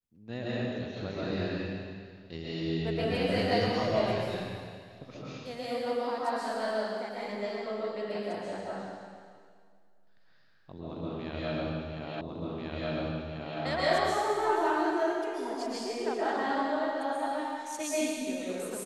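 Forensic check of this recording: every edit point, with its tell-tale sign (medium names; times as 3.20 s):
12.21 s: repeat of the last 1.39 s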